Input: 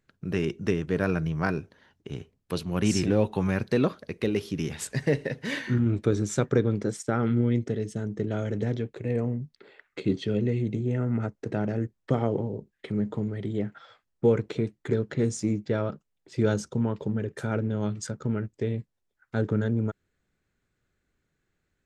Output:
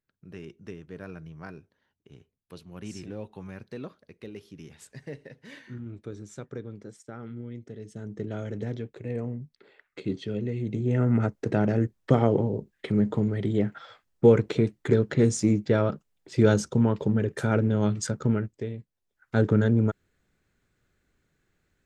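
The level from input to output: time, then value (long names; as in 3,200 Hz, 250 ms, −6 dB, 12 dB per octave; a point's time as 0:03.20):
0:07.60 −15 dB
0:08.15 −4.5 dB
0:10.54 −4.5 dB
0:11.02 +4.5 dB
0:18.30 +4.5 dB
0:18.78 −7.5 dB
0:19.37 +4.5 dB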